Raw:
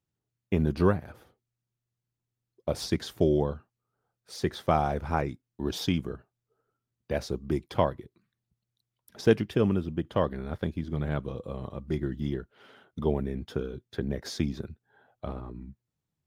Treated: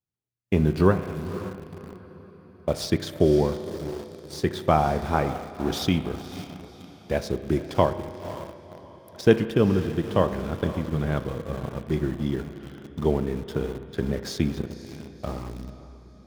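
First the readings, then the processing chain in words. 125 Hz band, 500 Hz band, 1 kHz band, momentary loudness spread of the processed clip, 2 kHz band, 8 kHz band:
+4.5 dB, +5.0 dB, +5.0 dB, 19 LU, +5.0 dB, +4.0 dB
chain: echo that smears into a reverb 532 ms, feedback 50%, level -12 dB; in parallel at -4 dB: small samples zeroed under -35.5 dBFS; on the sum: spectral noise reduction 8 dB; spring tank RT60 1.7 s, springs 32 ms, chirp 40 ms, DRR 11.5 dB

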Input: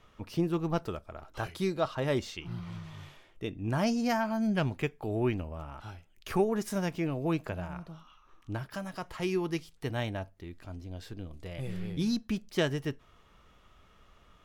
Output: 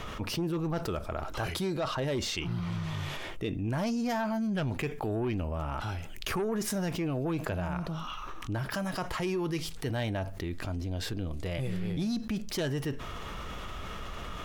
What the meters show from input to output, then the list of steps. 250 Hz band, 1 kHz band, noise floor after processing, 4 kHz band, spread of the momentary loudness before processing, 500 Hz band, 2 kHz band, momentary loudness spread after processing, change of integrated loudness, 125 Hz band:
0.0 dB, +1.0 dB, -40 dBFS, +4.0 dB, 15 LU, -1.0 dB, +1.5 dB, 7 LU, -0.5 dB, +2.0 dB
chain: saturation -24 dBFS, distortion -14 dB; level flattener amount 70%; trim -2 dB

